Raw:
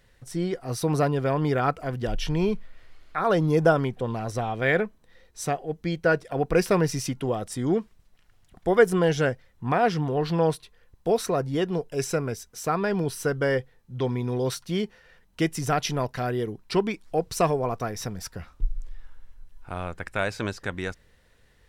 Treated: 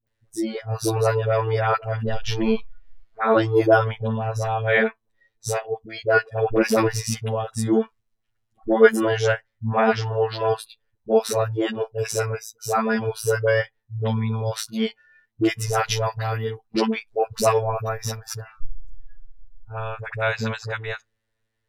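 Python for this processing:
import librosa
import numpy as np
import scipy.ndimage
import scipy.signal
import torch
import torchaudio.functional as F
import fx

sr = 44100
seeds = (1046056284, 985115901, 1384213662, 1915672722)

y = fx.robotise(x, sr, hz=111.0)
y = fx.dispersion(y, sr, late='highs', ms=70.0, hz=600.0)
y = fx.noise_reduce_blind(y, sr, reduce_db=21)
y = y * librosa.db_to_amplitude(6.5)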